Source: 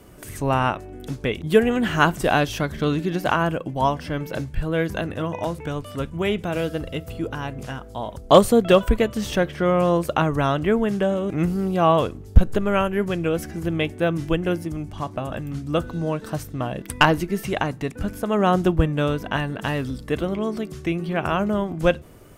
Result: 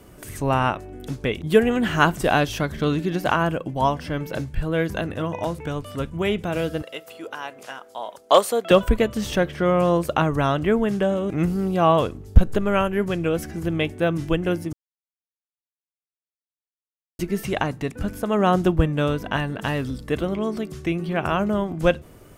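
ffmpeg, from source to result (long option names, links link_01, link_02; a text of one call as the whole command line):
ffmpeg -i in.wav -filter_complex "[0:a]asettb=1/sr,asplit=3[link_01][link_02][link_03];[link_01]atrim=end=6.824[link_04];[link_02]atrim=start=6.82:end=8.71,asetpts=PTS-STARTPTS,afade=type=in:duration=0.004:curve=qsin,afade=type=out:start_time=1.886:duration=0.004:curve=qsin,highpass=550[link_05];[link_03]atrim=start=8.706[link_06];[link_04][link_05]acrossfade=duration=0.004:curve1=hsin:curve2=qsin[link_07];[link_07][link_06]acrossfade=duration=0.004:curve1=qsin:curve2=hsin,asplit=3[link_08][link_09][link_10];[link_08]atrim=end=14.73,asetpts=PTS-STARTPTS,afade=type=out:start_time=14.726:duration=0.004:curve=hsin[link_11];[link_09]atrim=start=14.73:end=17.19,asetpts=PTS-STARTPTS,volume=0[link_12];[link_10]atrim=start=17.19,asetpts=PTS-STARTPTS,afade=type=in:duration=0.004:curve=hsin[link_13];[link_11][link_12][link_13]concat=n=3:v=0:a=1" out.wav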